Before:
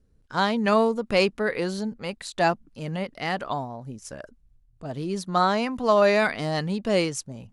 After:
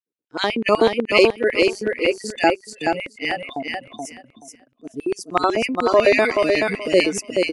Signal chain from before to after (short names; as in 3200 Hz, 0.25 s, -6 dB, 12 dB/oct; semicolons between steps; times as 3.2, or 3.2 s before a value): spectral gain 1.91–2.16, 270–2900 Hz +7 dB; spectral noise reduction 23 dB; LFO high-pass square 8 Hz 320–2400 Hz; on a send: feedback echo 0.428 s, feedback 19%, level -4 dB; on the sum: gain +4 dB